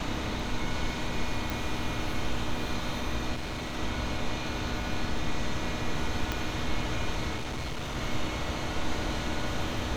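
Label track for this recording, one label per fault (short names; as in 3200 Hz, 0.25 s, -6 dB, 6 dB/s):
1.500000	1.500000	pop
3.340000	3.770000	clipped -31 dBFS
6.320000	6.320000	pop -14 dBFS
7.360000	7.970000	clipped -30.5 dBFS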